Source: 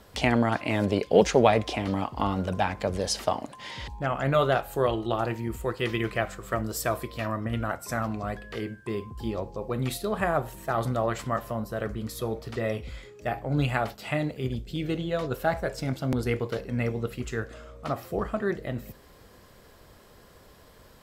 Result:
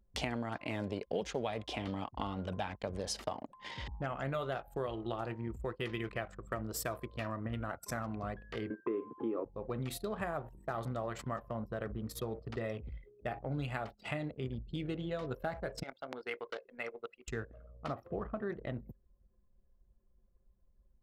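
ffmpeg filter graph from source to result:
ffmpeg -i in.wav -filter_complex "[0:a]asettb=1/sr,asplit=3[link_01][link_02][link_03];[link_01]atrim=end=1.154[link_04];[link_02]atrim=start=1.15:end=2.92,asetpts=PTS-STARTPTS,afade=type=in:duration=0.004:curve=qsin,afade=type=out:start_time=1.766:duration=0.004:curve=qsin,agate=range=-33dB:threshold=-35dB:ratio=3:release=100:detection=peak,equalizer=frequency=3300:width_type=o:width=0.4:gain=5.5[link_05];[link_03]atrim=start=2.916[link_06];[link_04][link_05]acrossfade=duration=0.004:curve1=hsin:curve2=qsin[link_07];[link_07][link_06]acrossfade=duration=0.004:curve1=qsin:curve2=hsin,asettb=1/sr,asplit=3[link_08][link_09][link_10];[link_08]atrim=end=8.704[link_11];[link_09]atrim=start=8.7:end=9.45,asetpts=PTS-STARTPTS,afade=type=in:duration=0.004:curve=qsin,afade=type=out:start_time=0.746:duration=0.004:curve=qsin,acontrast=81,highpass=frequency=190:width=0.5412,highpass=frequency=190:width=1.3066,equalizer=frequency=190:width_type=q:width=4:gain=-10,equalizer=frequency=300:width_type=q:width=4:gain=10,equalizer=frequency=450:width_type=q:width=4:gain=7,equalizer=frequency=780:width_type=q:width=4:gain=-6,equalizer=frequency=1200:width_type=q:width=4:gain=7,equalizer=frequency=1900:width_type=q:width=4:gain=-5,lowpass=frequency=2100:width=0.5412,lowpass=frequency=2100:width=1.3066[link_12];[link_10]atrim=start=9.446[link_13];[link_11][link_12]acrossfade=duration=0.004:curve1=hsin:curve2=qsin[link_14];[link_14][link_13]acrossfade=duration=0.004:curve1=qsin:curve2=hsin,asettb=1/sr,asplit=3[link_15][link_16][link_17];[link_15]atrim=end=15.834[link_18];[link_16]atrim=start=15.83:end=17.28,asetpts=PTS-STARTPTS,afade=type=in:duration=0.004:curve=qsin,afade=type=out:start_time=1.446:duration=0.004:curve=qsin,highpass=660,acrossover=split=5500[link_19][link_20];[link_20]acompressor=threshold=-55dB:ratio=4:attack=1:release=60[link_21];[link_19][link_21]amix=inputs=2:normalize=0[link_22];[link_17]atrim=start=17.276[link_23];[link_18][link_22]acrossfade=duration=0.004:curve1=hsin:curve2=qsin[link_24];[link_24][link_23]acrossfade=duration=0.004:curve1=qsin:curve2=hsin,asettb=1/sr,asplit=3[link_25][link_26][link_27];[link_25]atrim=end=18.064[link_28];[link_26]atrim=start=18.06:end=18.5,asetpts=PTS-STARTPTS,afade=type=in:duration=0.004:curve=qsin,afade=type=out:start_time=0.436:duration=0.004:curve=qsin,aemphasis=mode=reproduction:type=75kf,acompressor=mode=upward:threshold=-35dB:ratio=2.5:attack=3.2:release=140:knee=2.83:detection=peak[link_29];[link_27]atrim=start=18.496[link_30];[link_28][link_29]acrossfade=duration=0.004:curve1=hsin:curve2=qsin[link_31];[link_31][link_30]acrossfade=duration=0.004:curve1=qsin:curve2=hsin,anlmdn=1,acompressor=threshold=-31dB:ratio=4,volume=-4dB" out.wav

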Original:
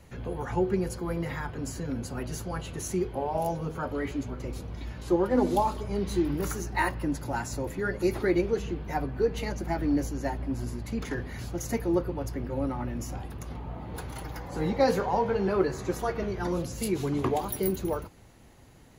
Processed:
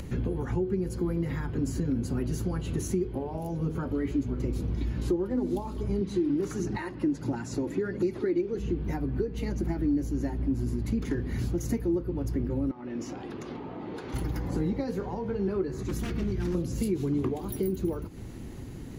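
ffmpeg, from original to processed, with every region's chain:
ffmpeg -i in.wav -filter_complex "[0:a]asettb=1/sr,asplit=3[link_01][link_02][link_03];[link_01]atrim=end=6.014[link_04];[link_02]atrim=start=6.01:end=8.55,asetpts=PTS-STARTPTS,afade=type=in:duration=0.004:curve=qsin,afade=type=out:start_time=2.536:duration=0.004:curve=qsin,highpass=150,lowpass=7700,aphaser=in_gain=1:out_gain=1:delay=3.7:decay=0.36:speed=1.5:type=triangular[link_05];[link_03]atrim=start=8.546[link_06];[link_04][link_05]acrossfade=duration=0.004:curve1=hsin:curve2=qsin[link_07];[link_07][link_06]acrossfade=duration=0.004:curve1=qsin:curve2=hsin,asettb=1/sr,asplit=3[link_08][link_09][link_10];[link_08]atrim=end=12.714[link_11];[link_09]atrim=start=12.71:end=14.14,asetpts=PTS-STARTPTS,afade=type=in:duration=0.004:curve=qsin,afade=type=out:start_time=1.426:duration=0.004:curve=qsin,highpass=140,acrossover=split=310 6200:gain=0.2 1 0.0708[link_12][link_13][link_14];[link_12][link_13][link_14]amix=inputs=3:normalize=0,acompressor=threshold=-44dB:ratio=2.5:attack=3.2:release=140:knee=1:detection=peak[link_15];[link_10]atrim=start=14.136[link_16];[link_11][link_15]acrossfade=duration=0.004:curve1=hsin:curve2=qsin[link_17];[link_17][link_16]acrossfade=duration=0.004:curve1=qsin:curve2=hsin,asettb=1/sr,asplit=3[link_18][link_19][link_20];[link_18]atrim=end=15.834[link_21];[link_19]atrim=start=15.83:end=16.55,asetpts=PTS-STARTPTS,afade=type=in:duration=0.004:curve=qsin,afade=type=out:start_time=0.716:duration=0.004:curve=qsin,aeval=exprs='0.0501*(abs(mod(val(0)/0.0501+3,4)-2)-1)':channel_layout=same,equalizer=frequency=690:width=0.5:gain=-9.5,bandreject=frequency=450:width=13[link_22];[link_20]atrim=start=16.546[link_23];[link_21][link_22]acrossfade=duration=0.004:curve1=hsin:curve2=qsin[link_24];[link_24][link_23]acrossfade=duration=0.004:curve1=qsin:curve2=hsin,acompressor=threshold=-39dB:ratio=6,lowshelf=frequency=460:width_type=q:width=1.5:gain=8.5,acompressor=mode=upward:threshold=-39dB:ratio=2.5,volume=4dB" out.wav

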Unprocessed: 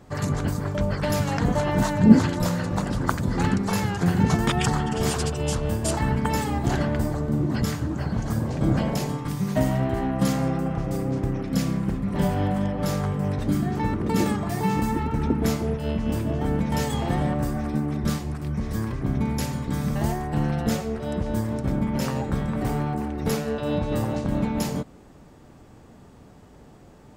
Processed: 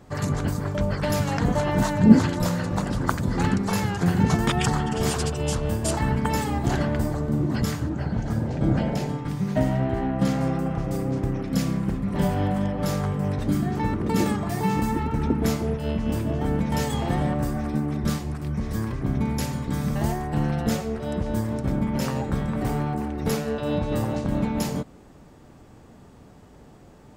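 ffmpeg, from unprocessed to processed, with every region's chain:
ffmpeg -i in.wav -filter_complex "[0:a]asettb=1/sr,asplit=3[link_01][link_02][link_03];[link_01]atrim=end=7.894[link_04];[link_02]atrim=start=7.89:end=10.41,asetpts=PTS-STARTPTS,afade=type=in:duration=0.004:curve=qsin,afade=type=out:start_time=2.516:duration=0.004:curve=qsin,lowpass=frequency=3500:poles=1,bandreject=frequency=1100:width=8.1[link_05];[link_03]atrim=start=10.406[link_06];[link_04][link_05]acrossfade=duration=0.004:curve1=hsin:curve2=qsin[link_07];[link_07][link_06]acrossfade=duration=0.004:curve1=qsin:curve2=hsin" out.wav

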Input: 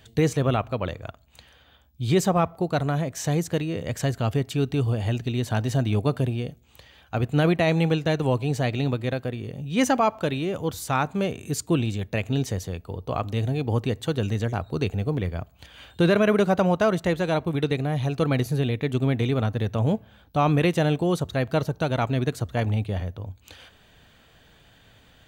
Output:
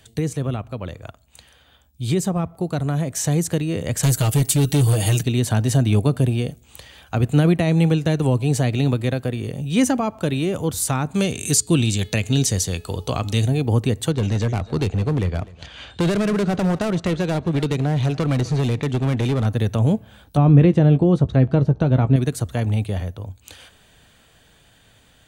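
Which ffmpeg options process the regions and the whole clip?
ffmpeg -i in.wav -filter_complex "[0:a]asettb=1/sr,asplit=3[link_01][link_02][link_03];[link_01]atrim=end=4.034[link_04];[link_02]atrim=start=4.03:end=5.23,asetpts=PTS-STARTPTS,afade=type=in:duration=0.004:curve=qsin,afade=type=out:start_time=1.196:duration=0.004:curve=qsin,aemphasis=mode=production:type=75kf,aecho=1:1:6.4:0.88,atrim=end_sample=52920,asoftclip=type=hard:threshold=-19dB[link_05];[link_03]atrim=start=5.226[link_06];[link_04][link_05]acrossfade=duration=0.004:curve1=hsin:curve2=qsin[link_07];[link_07][link_06]acrossfade=duration=0.004:curve1=qsin:curve2=hsin,asettb=1/sr,asplit=3[link_08][link_09][link_10];[link_08]atrim=end=11.144[link_11];[link_09]atrim=start=11.14:end=13.47,asetpts=PTS-STARTPTS,afade=type=in:duration=0.004:curve=qsin,afade=type=out:start_time=2.326:duration=0.004:curve=qsin,equalizer=frequency=5500:width=0.44:gain=12,bandreject=frequency=425.7:width_type=h:width=4,bandreject=frequency=851.4:width_type=h:width=4,bandreject=frequency=1277.1:width_type=h:width=4,bandreject=frequency=1702.8:width_type=h:width=4,bandreject=frequency=2128.5:width_type=h:width=4,bandreject=frequency=2554.2:width_type=h:width=4,bandreject=frequency=2979.9:width_type=h:width=4,bandreject=frequency=3405.6:width_type=h:width=4,bandreject=frequency=3831.3:width_type=h:width=4,bandreject=frequency=4257:width_type=h:width=4,bandreject=frequency=4682.7:width_type=h:width=4[link_12];[link_10]atrim=start=13.466[link_13];[link_11][link_12]acrossfade=duration=0.004:curve1=hsin:curve2=qsin[link_14];[link_14][link_13]acrossfade=duration=0.004:curve1=qsin:curve2=hsin,asettb=1/sr,asplit=3[link_15][link_16][link_17];[link_15]atrim=end=14.114[link_18];[link_16]atrim=start=14.11:end=19.46,asetpts=PTS-STARTPTS,afade=type=in:duration=0.004:curve=qsin,afade=type=out:start_time=5.346:duration=0.004:curve=qsin,lowpass=frequency=6000:width=0.5412,lowpass=frequency=6000:width=1.3066,volume=21.5dB,asoftclip=hard,volume=-21.5dB,aecho=1:1:252:0.0891,atrim=end_sample=235935[link_19];[link_17]atrim=start=19.456[link_20];[link_18][link_19]acrossfade=duration=0.004:curve1=hsin:curve2=qsin[link_21];[link_21][link_20]acrossfade=duration=0.004:curve1=qsin:curve2=hsin,asettb=1/sr,asplit=3[link_22][link_23][link_24];[link_22]atrim=end=20.374[link_25];[link_23]atrim=start=20.37:end=22.16,asetpts=PTS-STARTPTS,afade=type=in:duration=0.004:curve=qsin,afade=type=out:start_time=1.786:duration=0.004:curve=qsin,lowpass=4100,tiltshelf=frequency=1400:gain=5,asplit=2[link_26][link_27];[link_27]adelay=15,volume=-11dB[link_28];[link_26][link_28]amix=inputs=2:normalize=0,atrim=end_sample=78939[link_29];[link_24]atrim=start=22.156[link_30];[link_25][link_29]acrossfade=duration=0.004:curve1=hsin:curve2=qsin[link_31];[link_31][link_30]acrossfade=duration=0.004:curve1=qsin:curve2=hsin,acrossover=split=340[link_32][link_33];[link_33]acompressor=threshold=-33dB:ratio=3[link_34];[link_32][link_34]amix=inputs=2:normalize=0,equalizer=frequency=9400:width=1:gain=11,dynaudnorm=framelen=530:gausssize=11:maxgain=7dB" out.wav

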